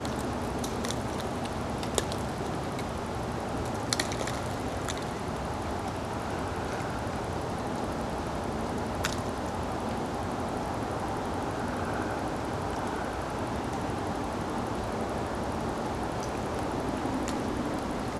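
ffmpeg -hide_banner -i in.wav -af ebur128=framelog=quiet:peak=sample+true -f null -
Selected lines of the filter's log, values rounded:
Integrated loudness:
  I:         -32.5 LUFS
  Threshold: -42.5 LUFS
Loudness range:
  LRA:         1.1 LU
  Threshold: -52.6 LUFS
  LRA low:   -33.2 LUFS
  LRA high:  -32.2 LUFS
Sample peak:
  Peak:       -6.1 dBFS
True peak:
  Peak:       -6.1 dBFS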